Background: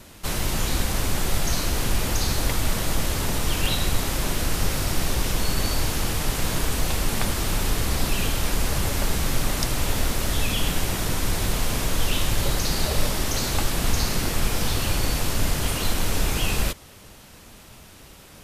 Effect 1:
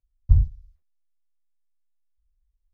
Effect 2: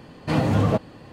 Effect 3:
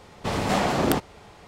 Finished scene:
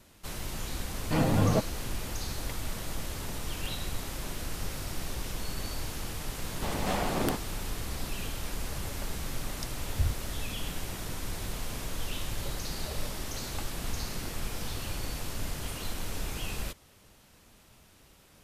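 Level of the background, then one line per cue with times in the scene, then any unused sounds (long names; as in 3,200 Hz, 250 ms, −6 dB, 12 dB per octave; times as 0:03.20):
background −12 dB
0:00.83: mix in 2 −5 dB
0:06.37: mix in 3 −8 dB
0:09.69: mix in 1 −9.5 dB + high-pass filter 55 Hz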